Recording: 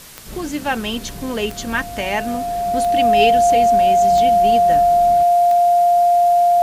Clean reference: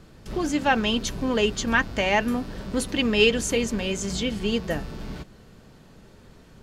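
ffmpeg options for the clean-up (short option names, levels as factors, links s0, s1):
-af "adeclick=t=4,bandreject=f=700:w=30,afwtdn=0.011"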